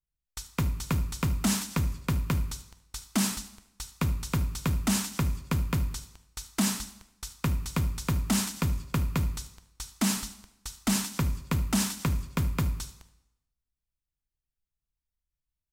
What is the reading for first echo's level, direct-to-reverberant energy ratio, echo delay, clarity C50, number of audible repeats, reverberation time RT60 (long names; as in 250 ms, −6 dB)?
−18.5 dB, 10.0 dB, 75 ms, 13.0 dB, 1, 0.90 s